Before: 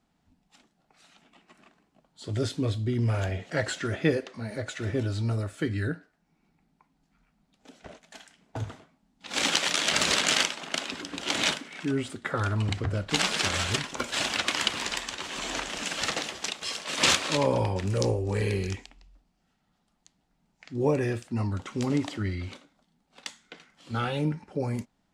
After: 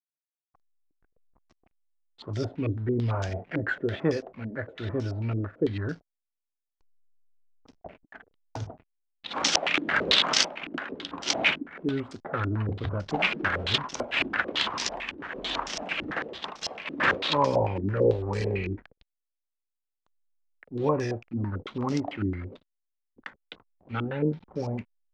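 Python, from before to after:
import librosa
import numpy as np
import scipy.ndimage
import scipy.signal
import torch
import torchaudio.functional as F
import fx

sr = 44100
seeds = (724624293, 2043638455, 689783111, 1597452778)

y = fx.transient(x, sr, attack_db=-7, sustain_db=-3, at=(21.06, 21.58))
y = fx.backlash(y, sr, play_db=-42.0)
y = fx.filter_held_lowpass(y, sr, hz=9.0, low_hz=310.0, high_hz=5600.0)
y = F.gain(torch.from_numpy(y), -2.0).numpy()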